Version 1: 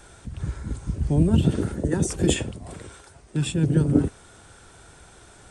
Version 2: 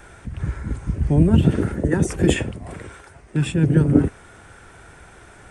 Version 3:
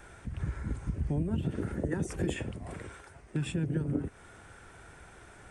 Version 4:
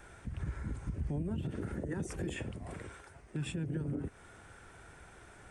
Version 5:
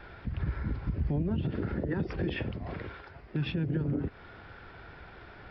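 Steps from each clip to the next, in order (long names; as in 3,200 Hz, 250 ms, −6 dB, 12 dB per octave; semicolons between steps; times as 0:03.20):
octave-band graphic EQ 2,000/4,000/8,000 Hz +6/−7/−6 dB; level +4 dB
downward compressor 6 to 1, threshold −21 dBFS, peak gain reduction 12 dB; level −7 dB
brickwall limiter −26 dBFS, peak gain reduction 8 dB; level −2.5 dB
downsampling to 11,025 Hz; level +6 dB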